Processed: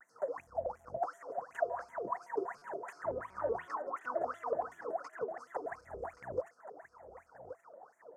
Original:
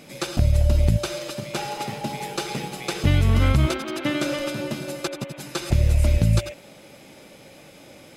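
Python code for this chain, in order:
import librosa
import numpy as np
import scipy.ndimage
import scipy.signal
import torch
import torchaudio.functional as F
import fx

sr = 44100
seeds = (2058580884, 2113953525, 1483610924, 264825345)

p1 = scipy.signal.sosfilt(scipy.signal.cheby1(5, 1.0, [1700.0, 5600.0], 'bandstop', fs=sr, output='sos'), x)
p2 = 10.0 ** (-15.0 / 20.0) * np.tanh(p1 / 10.0 ** (-15.0 / 20.0))
p3 = fx.curve_eq(p2, sr, hz=(150.0, 340.0, 770.0), db=(0, 3, 13))
p4 = fx.wah_lfo(p3, sr, hz=2.8, low_hz=450.0, high_hz=3000.0, q=20.0)
p5 = fx.low_shelf(p4, sr, hz=370.0, db=11.0)
p6 = p5 + fx.echo_single(p5, sr, ms=1126, db=-12.0, dry=0)
p7 = fx.buffer_glitch(p6, sr, at_s=(2.58,), block=256, repeats=5)
p8 = fx.vibrato_shape(p7, sr, shape='square', rate_hz=5.3, depth_cents=250.0)
y = p8 * 10.0 ** (-2.5 / 20.0)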